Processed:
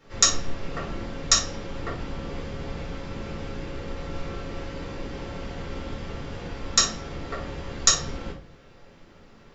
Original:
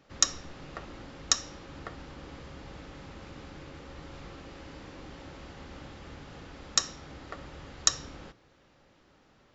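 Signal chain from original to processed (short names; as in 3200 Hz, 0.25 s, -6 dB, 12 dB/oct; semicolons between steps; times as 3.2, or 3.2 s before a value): shoebox room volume 160 m³, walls furnished, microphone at 4.3 m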